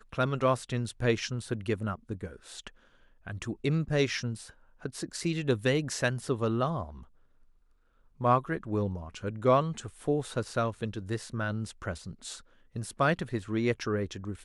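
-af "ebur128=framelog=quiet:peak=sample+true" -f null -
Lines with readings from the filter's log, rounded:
Integrated loudness:
  I:         -31.1 LUFS
  Threshold: -41.7 LUFS
Loudness range:
  LRA:         3.9 LU
  Threshold: -52.1 LUFS
  LRA low:   -34.3 LUFS
  LRA high:  -30.5 LUFS
Sample peak:
  Peak:      -11.9 dBFS
True peak:
  Peak:      -11.9 dBFS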